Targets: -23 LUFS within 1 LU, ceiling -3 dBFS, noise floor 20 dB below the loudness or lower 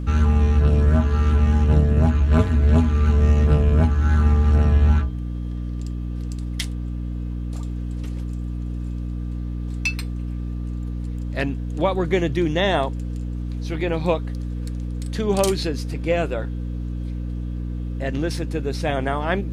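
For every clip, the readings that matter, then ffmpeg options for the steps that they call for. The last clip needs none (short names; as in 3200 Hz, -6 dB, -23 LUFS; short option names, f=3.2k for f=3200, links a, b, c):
hum 60 Hz; harmonics up to 300 Hz; hum level -25 dBFS; loudness -22.5 LUFS; peak -4.0 dBFS; loudness target -23.0 LUFS
-> -af "bandreject=f=60:t=h:w=6,bandreject=f=120:t=h:w=6,bandreject=f=180:t=h:w=6,bandreject=f=240:t=h:w=6,bandreject=f=300:t=h:w=6"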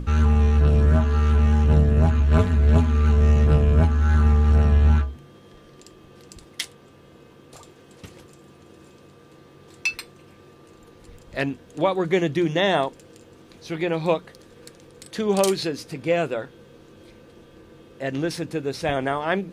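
hum none; loudness -21.0 LUFS; peak -4.0 dBFS; loudness target -23.0 LUFS
-> -af "volume=-2dB"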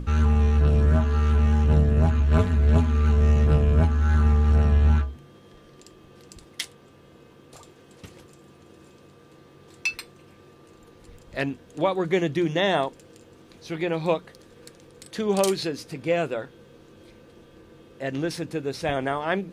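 loudness -23.0 LUFS; peak -6.0 dBFS; noise floor -52 dBFS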